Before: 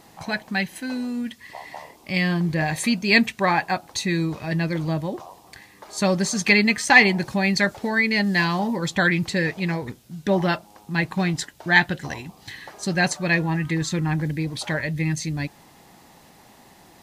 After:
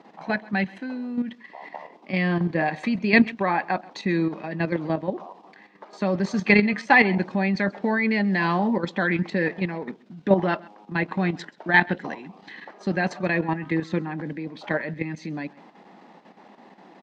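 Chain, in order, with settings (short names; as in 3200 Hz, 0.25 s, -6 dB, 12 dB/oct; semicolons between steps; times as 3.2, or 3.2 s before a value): Chebyshev high-pass 190 Hz, order 4; high shelf 3700 Hz -10.5 dB; level quantiser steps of 9 dB; air absorption 170 m; echo 0.131 s -22.5 dB; gain +5.5 dB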